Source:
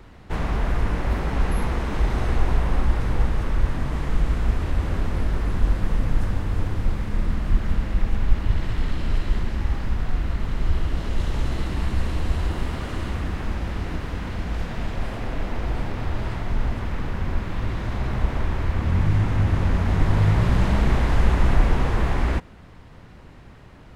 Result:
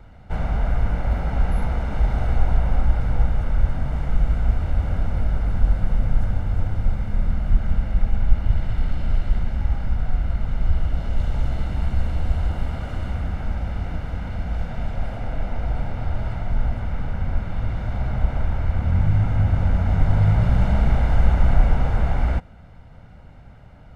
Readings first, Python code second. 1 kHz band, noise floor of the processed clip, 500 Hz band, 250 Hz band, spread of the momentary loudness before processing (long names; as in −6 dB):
−1.5 dB, −44 dBFS, −2.0 dB, −2.0 dB, 8 LU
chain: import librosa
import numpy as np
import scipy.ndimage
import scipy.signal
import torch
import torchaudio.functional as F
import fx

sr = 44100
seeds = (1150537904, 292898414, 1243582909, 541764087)

y = fx.high_shelf(x, sr, hz=2200.0, db=-9.0)
y = y + 0.57 * np.pad(y, (int(1.4 * sr / 1000.0), 0))[:len(y)]
y = y * librosa.db_to_amplitude(-1.5)